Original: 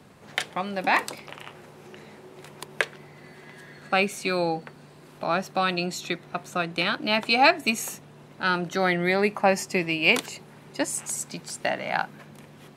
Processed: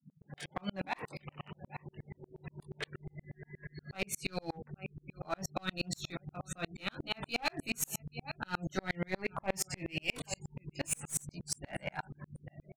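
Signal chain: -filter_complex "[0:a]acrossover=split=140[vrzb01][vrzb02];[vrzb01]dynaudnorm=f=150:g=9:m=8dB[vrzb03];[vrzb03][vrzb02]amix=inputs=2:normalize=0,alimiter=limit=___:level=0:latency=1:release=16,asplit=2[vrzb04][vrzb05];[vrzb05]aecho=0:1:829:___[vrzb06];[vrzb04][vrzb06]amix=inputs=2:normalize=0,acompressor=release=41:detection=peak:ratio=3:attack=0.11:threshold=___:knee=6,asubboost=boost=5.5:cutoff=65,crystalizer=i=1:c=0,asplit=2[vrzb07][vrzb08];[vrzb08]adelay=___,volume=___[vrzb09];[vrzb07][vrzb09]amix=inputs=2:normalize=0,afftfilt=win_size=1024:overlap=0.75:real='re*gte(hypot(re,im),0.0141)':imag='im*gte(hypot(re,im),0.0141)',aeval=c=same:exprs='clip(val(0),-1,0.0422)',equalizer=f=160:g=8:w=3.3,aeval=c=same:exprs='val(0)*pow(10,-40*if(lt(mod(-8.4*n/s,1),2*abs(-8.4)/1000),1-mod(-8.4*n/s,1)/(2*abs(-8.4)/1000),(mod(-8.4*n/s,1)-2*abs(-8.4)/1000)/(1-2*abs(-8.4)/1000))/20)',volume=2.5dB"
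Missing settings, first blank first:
-9dB, 0.0891, -28dB, 21, -5dB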